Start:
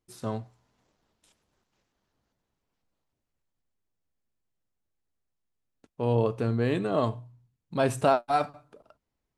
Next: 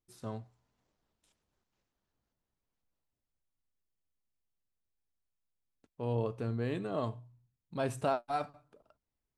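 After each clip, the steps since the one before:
low-shelf EQ 80 Hz +5.5 dB
level −9 dB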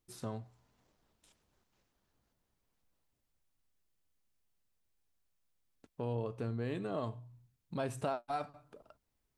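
downward compressor 2 to 1, threshold −47 dBFS, peak gain reduction 11.5 dB
level +6 dB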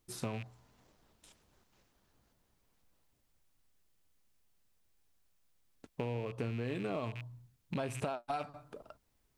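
loose part that buzzes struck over −47 dBFS, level −39 dBFS
downward compressor 6 to 1, threshold −40 dBFS, peak gain reduction 9.5 dB
level +6.5 dB

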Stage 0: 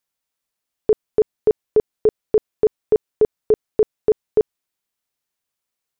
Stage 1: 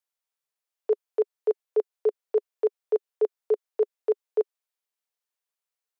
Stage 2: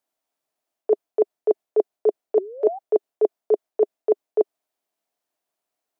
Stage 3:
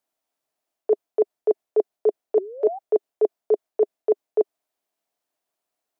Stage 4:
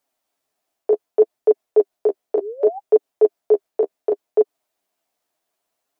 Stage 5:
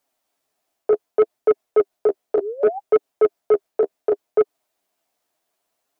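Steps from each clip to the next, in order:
elliptic high-pass filter 410 Hz; level −7 dB
reversed playback; downward compressor, threshold −27 dBFS, peak gain reduction 8.5 dB; reversed playback; sound drawn into the spectrogram rise, 0:02.36–0:02.79, 340–810 Hz −47 dBFS; hollow resonant body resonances 300/640 Hz, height 15 dB, ringing for 20 ms; level +3.5 dB
brickwall limiter −8.5 dBFS, peak gain reduction 3 dB
downward compressor, threshold −17 dBFS, peak gain reduction 4 dB; flanger 0.67 Hz, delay 6.6 ms, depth 7.4 ms, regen +13%; level +9 dB
soft clipping −11 dBFS, distortion −15 dB; level +2 dB

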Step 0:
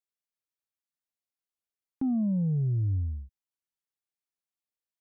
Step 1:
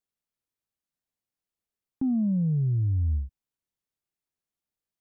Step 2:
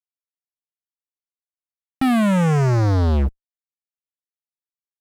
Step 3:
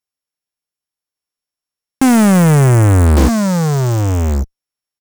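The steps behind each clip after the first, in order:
low-shelf EQ 440 Hz +10 dB; brickwall limiter −21.5 dBFS, peak gain reduction 7.5 dB
fuzz pedal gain 42 dB, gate −52 dBFS; level −2.5 dB
samples sorted by size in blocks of 8 samples; single-tap delay 1,155 ms −5.5 dB; highs frequency-modulated by the lows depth 0.96 ms; level +8 dB

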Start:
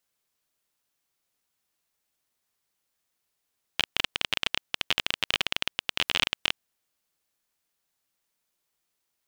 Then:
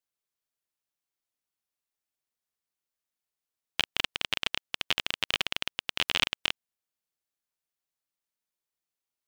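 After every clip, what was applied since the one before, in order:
expander for the loud parts 1.5 to 1, over −46 dBFS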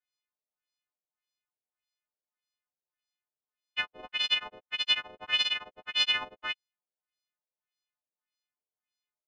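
every partial snapped to a pitch grid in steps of 3 semitones
auto-filter low-pass sine 1.7 Hz 520–4,500 Hz
level −8 dB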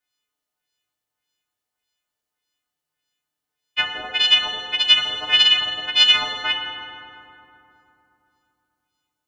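feedback delay network reverb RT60 3 s, low-frequency decay 1.25×, high-frequency decay 0.5×, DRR 0.5 dB
level +8.5 dB

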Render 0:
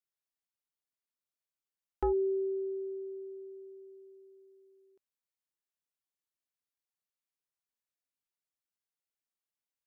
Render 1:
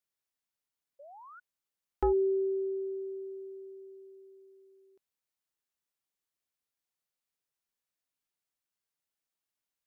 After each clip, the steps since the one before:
sound drawn into the spectrogram rise, 0:00.99–0:01.40, 540–1,500 Hz −53 dBFS
level +2.5 dB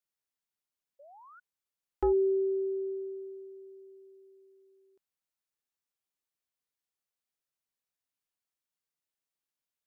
dynamic equaliser 290 Hz, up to +6 dB, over −43 dBFS, Q 1.1
level −3 dB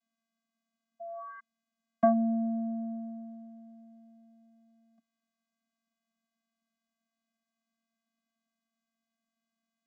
channel vocoder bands 16, square 227 Hz

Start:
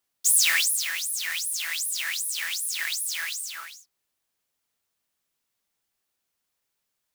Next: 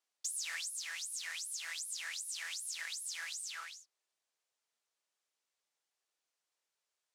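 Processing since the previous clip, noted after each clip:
Chebyshev band-pass filter 470–7,500 Hz, order 2
dynamic equaliser 2,900 Hz, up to −4 dB, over −35 dBFS, Q 0.83
downward compressor 4 to 1, threshold −34 dBFS, peak gain reduction 12.5 dB
level −5 dB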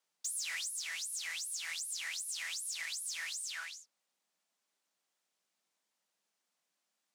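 low-shelf EQ 270 Hz +11.5 dB
frequency shifter +160 Hz
soft clipping −34 dBFS, distortion −19 dB
level +3 dB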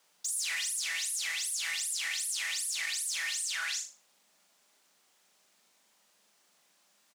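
in parallel at +3 dB: compressor whose output falls as the input rises −49 dBFS, ratio −1
on the sum: double-tracking delay 44 ms −12 dB
flutter between parallel walls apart 6.7 metres, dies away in 0.32 s
level +1.5 dB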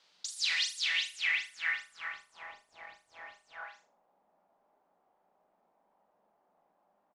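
low-pass filter sweep 4,200 Hz → 790 Hz, 0:00.69–0:02.61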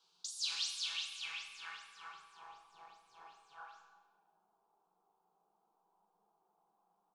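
phaser with its sweep stopped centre 390 Hz, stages 8
comb and all-pass reverb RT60 1.3 s, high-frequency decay 0.85×, pre-delay 55 ms, DRR 7.5 dB
flanger 0.98 Hz, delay 9.9 ms, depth 5.1 ms, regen −40%
level +1 dB

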